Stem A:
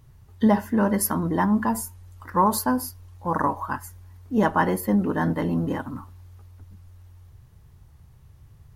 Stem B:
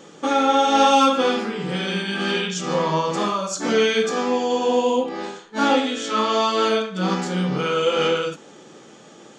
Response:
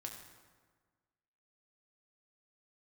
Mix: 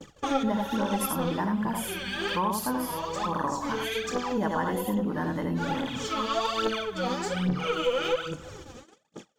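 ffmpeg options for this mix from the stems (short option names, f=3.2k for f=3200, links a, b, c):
-filter_complex "[0:a]volume=0.5dB,asplit=3[a][b][c];[b]volume=-3.5dB[d];[1:a]bandreject=f=360:w=12,aphaser=in_gain=1:out_gain=1:delay=4.3:decay=0.76:speed=1.2:type=triangular,aeval=exprs='(tanh(1.26*val(0)+0.45)-tanh(0.45))/1.26':c=same,volume=-1dB,asplit=2[e][f];[f]volume=-11.5dB[g];[c]apad=whole_len=413842[h];[e][h]sidechaincompress=threshold=-33dB:ratio=4:attack=16:release=649[i];[2:a]atrim=start_sample=2205[j];[g][j]afir=irnorm=-1:irlink=0[k];[d]aecho=0:1:82:1[l];[a][i][k][l]amix=inputs=4:normalize=0,agate=range=-38dB:threshold=-41dB:ratio=16:detection=peak,acompressor=threshold=-32dB:ratio=2"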